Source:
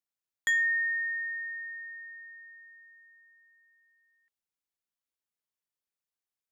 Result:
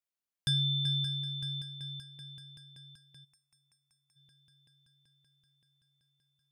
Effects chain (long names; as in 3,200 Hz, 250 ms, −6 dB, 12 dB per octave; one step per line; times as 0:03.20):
echo machine with several playback heads 191 ms, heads second and third, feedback 72%, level −11 dB
gain on a spectral selection 0:03.25–0:04.16, 970–6,300 Hz −17 dB
ring modulation 1,700 Hz